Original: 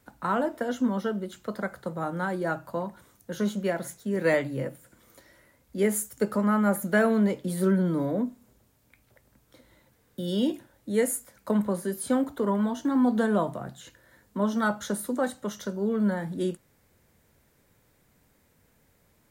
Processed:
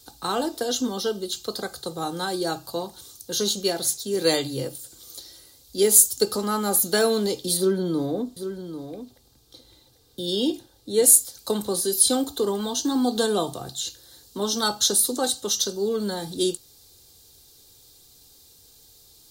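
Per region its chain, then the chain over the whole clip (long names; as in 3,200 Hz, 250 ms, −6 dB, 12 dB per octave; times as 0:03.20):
0:07.57–0:11.04: high-shelf EQ 3,300 Hz −11 dB + single-tap delay 793 ms −10 dB
whole clip: high shelf with overshoot 2,900 Hz +13 dB, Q 3; comb filter 2.5 ms, depth 57%; level +2 dB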